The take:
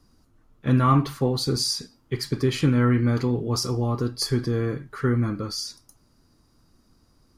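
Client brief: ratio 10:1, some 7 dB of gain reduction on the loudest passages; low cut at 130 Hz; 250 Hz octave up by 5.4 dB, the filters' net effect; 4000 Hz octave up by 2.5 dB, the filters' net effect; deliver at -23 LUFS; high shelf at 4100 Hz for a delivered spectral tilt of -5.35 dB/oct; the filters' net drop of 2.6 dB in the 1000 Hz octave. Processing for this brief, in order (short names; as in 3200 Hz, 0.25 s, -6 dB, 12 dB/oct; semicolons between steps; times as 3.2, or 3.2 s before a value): HPF 130 Hz; bell 250 Hz +6.5 dB; bell 1000 Hz -3.5 dB; bell 4000 Hz +7.5 dB; high shelf 4100 Hz -6 dB; compressor 10:1, threshold -19 dBFS; gain +2.5 dB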